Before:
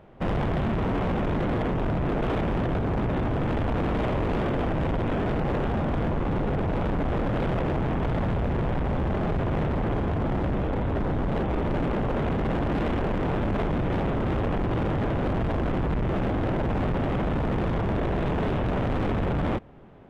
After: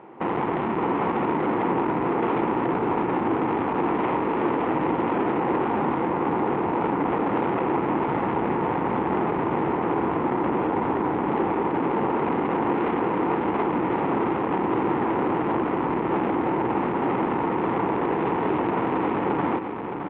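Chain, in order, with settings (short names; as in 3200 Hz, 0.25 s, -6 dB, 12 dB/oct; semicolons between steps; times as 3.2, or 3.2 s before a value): speaker cabinet 300–2500 Hz, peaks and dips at 330 Hz +5 dB, 610 Hz -10 dB, 920 Hz +7 dB, 1600 Hz -5 dB; limiter -24.5 dBFS, peak gain reduction 7 dB; on a send: echo 0.615 s -6 dB; on the sum: gain +9 dB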